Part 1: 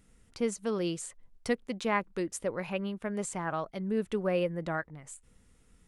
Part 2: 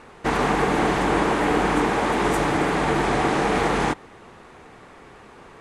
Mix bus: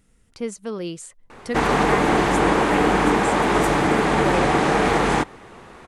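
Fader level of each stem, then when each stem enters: +2.0 dB, +2.5 dB; 0.00 s, 1.30 s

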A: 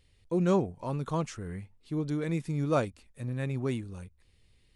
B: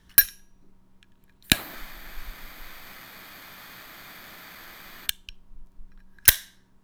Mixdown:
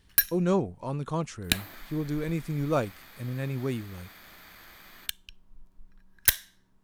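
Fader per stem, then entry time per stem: +0.5 dB, -6.0 dB; 0.00 s, 0.00 s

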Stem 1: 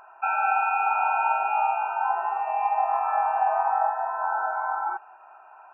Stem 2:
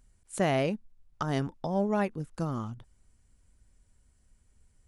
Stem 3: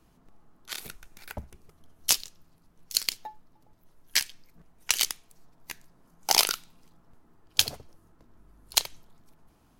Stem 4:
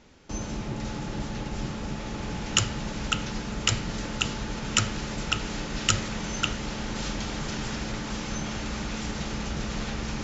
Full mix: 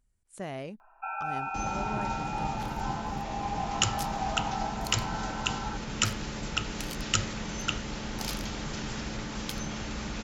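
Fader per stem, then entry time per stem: -10.5 dB, -11.0 dB, -17.5 dB, -3.5 dB; 0.80 s, 0.00 s, 1.90 s, 1.25 s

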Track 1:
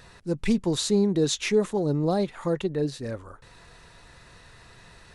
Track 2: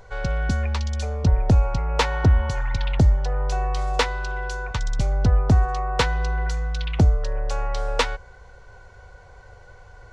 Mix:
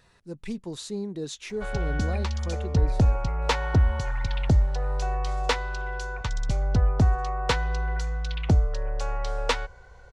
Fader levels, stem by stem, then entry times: -10.5 dB, -3.5 dB; 0.00 s, 1.50 s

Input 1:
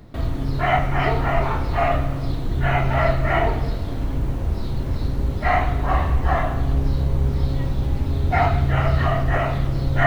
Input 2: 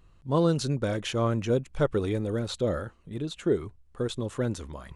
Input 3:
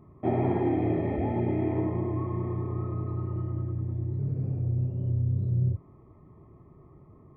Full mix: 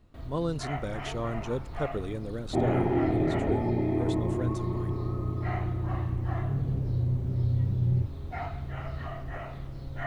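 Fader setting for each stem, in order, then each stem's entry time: -17.5 dB, -7.0 dB, 0.0 dB; 0.00 s, 0.00 s, 2.30 s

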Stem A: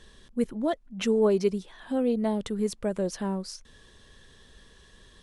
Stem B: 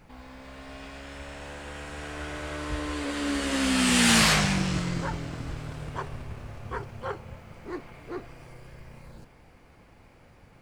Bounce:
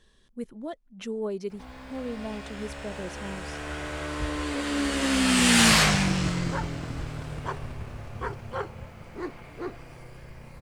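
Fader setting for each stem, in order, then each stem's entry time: -9.0 dB, +1.5 dB; 0.00 s, 1.50 s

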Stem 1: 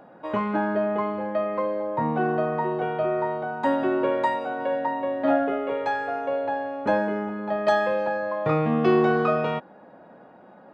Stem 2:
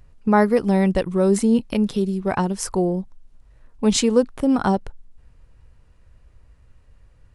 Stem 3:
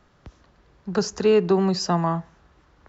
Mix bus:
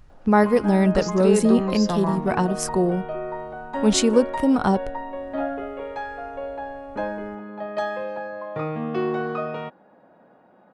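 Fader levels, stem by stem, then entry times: -5.5 dB, -0.5 dB, -4.5 dB; 0.10 s, 0.00 s, 0.00 s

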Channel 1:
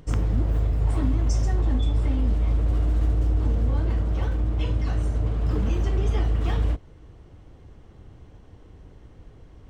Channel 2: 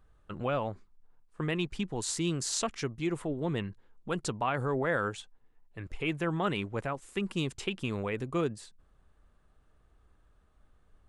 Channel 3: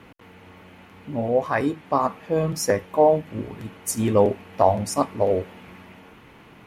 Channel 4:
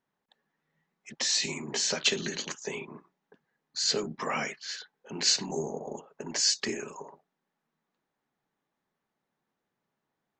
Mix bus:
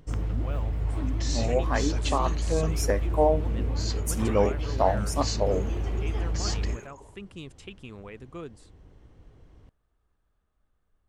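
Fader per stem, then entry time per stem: -6.0 dB, -9.5 dB, -5.5 dB, -9.0 dB; 0.00 s, 0.00 s, 0.20 s, 0.00 s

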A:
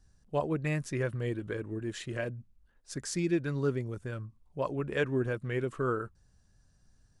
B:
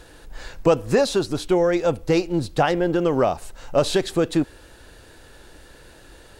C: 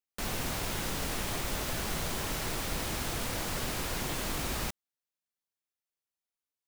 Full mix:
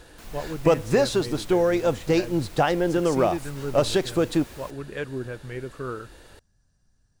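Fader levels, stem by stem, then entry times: -2.0 dB, -2.0 dB, -11.5 dB; 0.00 s, 0.00 s, 0.00 s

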